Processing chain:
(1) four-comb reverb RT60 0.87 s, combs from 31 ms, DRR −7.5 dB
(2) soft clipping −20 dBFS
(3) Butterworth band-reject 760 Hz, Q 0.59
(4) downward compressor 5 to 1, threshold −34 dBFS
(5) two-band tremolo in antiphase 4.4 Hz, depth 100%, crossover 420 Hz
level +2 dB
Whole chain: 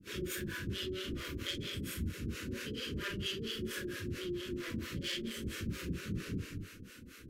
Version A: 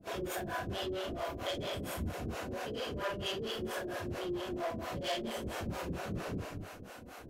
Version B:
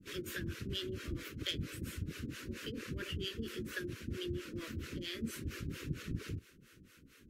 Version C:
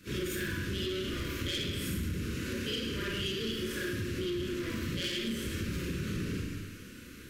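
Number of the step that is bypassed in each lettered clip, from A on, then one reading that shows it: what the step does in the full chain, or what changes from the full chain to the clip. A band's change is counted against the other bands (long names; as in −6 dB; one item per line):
3, 1 kHz band +14.5 dB
1, change in crest factor +3.5 dB
5, change in crest factor −3.0 dB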